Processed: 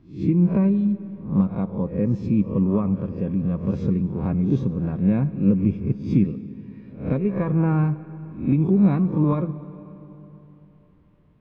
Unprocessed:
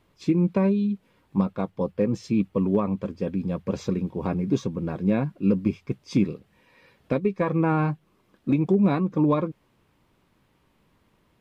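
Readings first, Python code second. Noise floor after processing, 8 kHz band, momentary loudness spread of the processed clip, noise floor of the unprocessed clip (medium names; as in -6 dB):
-54 dBFS, no reading, 12 LU, -66 dBFS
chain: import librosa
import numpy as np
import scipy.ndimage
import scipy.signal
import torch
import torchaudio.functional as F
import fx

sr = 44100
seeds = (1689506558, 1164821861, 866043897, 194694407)

y = fx.spec_swells(x, sr, rise_s=0.41)
y = fx.bass_treble(y, sr, bass_db=13, treble_db=-15)
y = fx.rev_freeverb(y, sr, rt60_s=3.6, hf_ratio=0.75, predelay_ms=20, drr_db=14.5)
y = y * 10.0 ** (-5.5 / 20.0)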